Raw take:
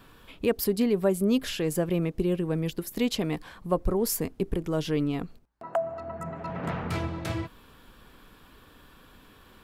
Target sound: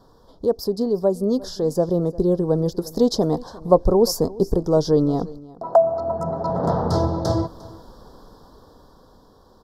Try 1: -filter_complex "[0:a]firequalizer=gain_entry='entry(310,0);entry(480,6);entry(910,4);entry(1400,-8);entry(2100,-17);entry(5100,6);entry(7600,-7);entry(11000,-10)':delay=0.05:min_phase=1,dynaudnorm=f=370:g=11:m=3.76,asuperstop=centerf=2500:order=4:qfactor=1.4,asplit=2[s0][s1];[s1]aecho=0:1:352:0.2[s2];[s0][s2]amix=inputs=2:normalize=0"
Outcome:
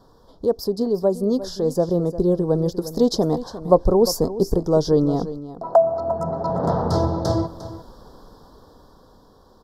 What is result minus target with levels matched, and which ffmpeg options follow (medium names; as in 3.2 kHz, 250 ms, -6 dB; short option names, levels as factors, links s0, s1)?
echo-to-direct +6.5 dB
-filter_complex "[0:a]firequalizer=gain_entry='entry(310,0);entry(480,6);entry(910,4);entry(1400,-8);entry(2100,-17);entry(5100,6);entry(7600,-7);entry(11000,-10)':delay=0.05:min_phase=1,dynaudnorm=f=370:g=11:m=3.76,asuperstop=centerf=2500:order=4:qfactor=1.4,asplit=2[s0][s1];[s1]aecho=0:1:352:0.0944[s2];[s0][s2]amix=inputs=2:normalize=0"